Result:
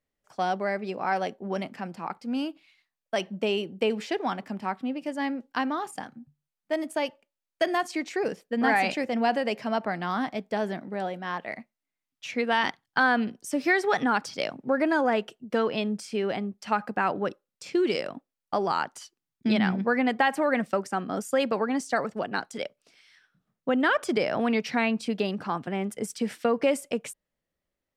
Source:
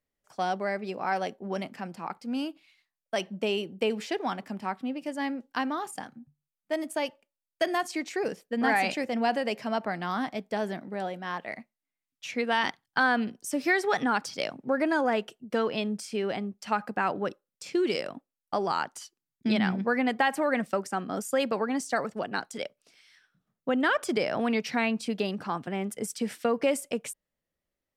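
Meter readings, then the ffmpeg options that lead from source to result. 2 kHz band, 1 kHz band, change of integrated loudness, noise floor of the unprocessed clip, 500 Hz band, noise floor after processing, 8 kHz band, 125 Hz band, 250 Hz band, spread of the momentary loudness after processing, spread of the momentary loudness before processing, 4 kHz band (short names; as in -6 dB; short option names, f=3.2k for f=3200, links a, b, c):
+1.5 dB, +2.0 dB, +2.0 dB, under -85 dBFS, +2.0 dB, under -85 dBFS, -2.0 dB, +2.0 dB, +2.0 dB, 10 LU, 10 LU, +0.5 dB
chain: -af "highshelf=f=6.6k:g=-6.5,volume=2dB"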